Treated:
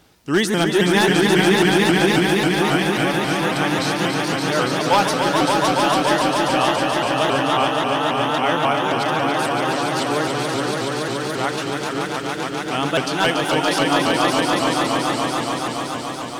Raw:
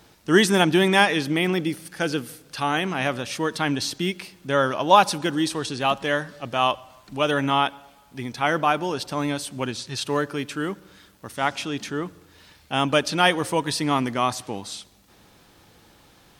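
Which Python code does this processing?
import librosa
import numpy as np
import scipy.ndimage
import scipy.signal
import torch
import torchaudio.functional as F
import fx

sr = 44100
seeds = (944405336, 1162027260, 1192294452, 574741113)

y = 10.0 ** (-7.5 / 20.0) * (np.abs((x / 10.0 ** (-7.5 / 20.0) + 3.0) % 4.0 - 2.0) - 1.0)
y = fx.echo_swell(y, sr, ms=142, loudest=5, wet_db=-4.5)
y = fx.vibrato_shape(y, sr, shape='saw_up', rate_hz=3.7, depth_cents=160.0)
y = y * librosa.db_to_amplitude(-1.0)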